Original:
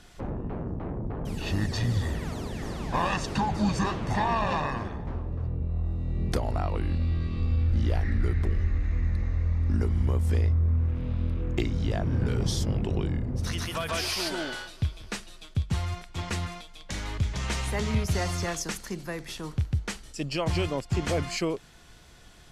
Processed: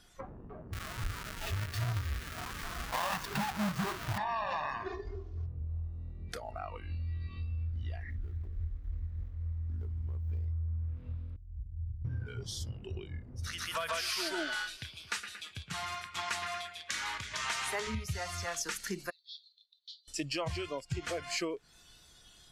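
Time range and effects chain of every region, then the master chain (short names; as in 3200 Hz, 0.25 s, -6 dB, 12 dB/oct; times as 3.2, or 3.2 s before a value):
0.73–4.18 half-waves squared off + dynamic EQ 8800 Hz, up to -3 dB, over -43 dBFS, Q 0.91
4.86–5.46 CVSD 32 kbps + bell 390 Hz +9 dB 0.23 oct + comb 2.8 ms, depth 91%
8.1–10.48 median filter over 25 samples + tremolo 3.5 Hz, depth 29%
11.36–12.05 inverse Chebyshev band-stop 450–8500 Hz, stop band 70 dB + compressor 2.5:1, threshold -31 dBFS
14.77–17.87 HPF 350 Hz 6 dB/oct + analogue delay 0.114 s, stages 2048, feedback 63%, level -10.5 dB
19.1–20.08 Butterworth band-pass 3900 Hz, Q 3.5 + differentiator
whole clip: compressor 8:1, threshold -34 dBFS; bell 1400 Hz +3 dB 0.77 oct; spectral noise reduction 14 dB; gain +3 dB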